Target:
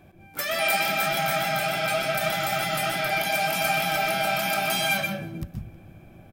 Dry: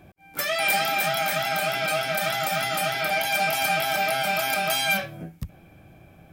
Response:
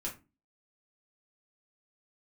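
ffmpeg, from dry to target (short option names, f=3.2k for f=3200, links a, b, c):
-filter_complex "[0:a]asplit=2[a][b];[b]adelay=314.9,volume=-22dB,highshelf=f=4k:g=-7.08[c];[a][c]amix=inputs=2:normalize=0,asplit=2[d][e];[1:a]atrim=start_sample=2205,lowshelf=f=410:g=7,adelay=123[f];[e][f]afir=irnorm=-1:irlink=0,volume=-5.5dB[g];[d][g]amix=inputs=2:normalize=0,volume=-2dB"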